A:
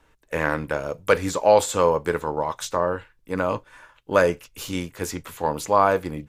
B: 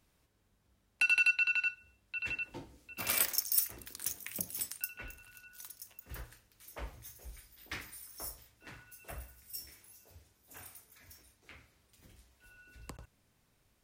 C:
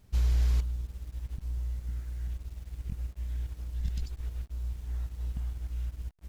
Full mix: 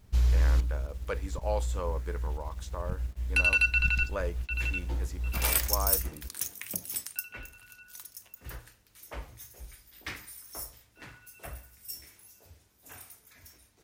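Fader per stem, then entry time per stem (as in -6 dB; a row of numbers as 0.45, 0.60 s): -16.5, +3.0, +2.0 dB; 0.00, 2.35, 0.00 s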